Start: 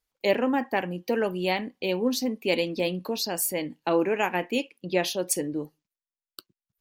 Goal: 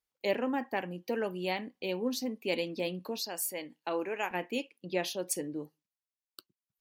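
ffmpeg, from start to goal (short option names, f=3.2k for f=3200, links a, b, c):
-af "asetnsamples=n=441:p=0,asendcmd='3.2 highpass f 480;4.31 highpass f 84',highpass=f=73:p=1,volume=-7dB"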